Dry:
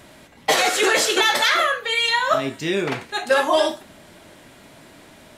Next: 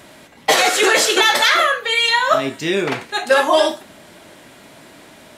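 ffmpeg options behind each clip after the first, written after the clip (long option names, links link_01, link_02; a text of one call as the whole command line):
ffmpeg -i in.wav -af "lowshelf=frequency=95:gain=-10,volume=4dB" out.wav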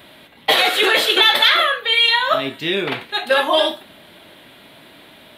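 ffmpeg -i in.wav -af "aexciter=amount=7.4:drive=3.1:freq=7500,highshelf=frequency=5200:width_type=q:width=3:gain=-13.5,volume=-3dB" out.wav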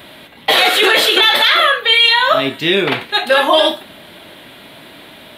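ffmpeg -i in.wav -af "alimiter=level_in=7.5dB:limit=-1dB:release=50:level=0:latency=1,volume=-1dB" out.wav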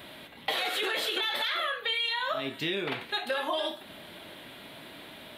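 ffmpeg -i in.wav -af "acompressor=threshold=-21dB:ratio=4,volume=-8.5dB" out.wav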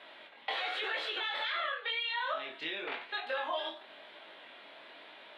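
ffmpeg -i in.wav -af "highpass=540,lowpass=3200,flanger=delay=18.5:depth=6.5:speed=0.95" out.wav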